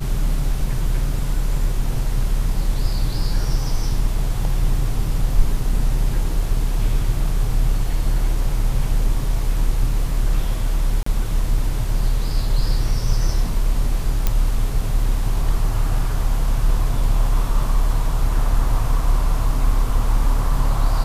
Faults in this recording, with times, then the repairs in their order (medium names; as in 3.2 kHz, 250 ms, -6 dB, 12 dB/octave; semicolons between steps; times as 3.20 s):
11.03–11.06 s: dropout 34 ms
14.27 s: pop -5 dBFS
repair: de-click; interpolate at 11.03 s, 34 ms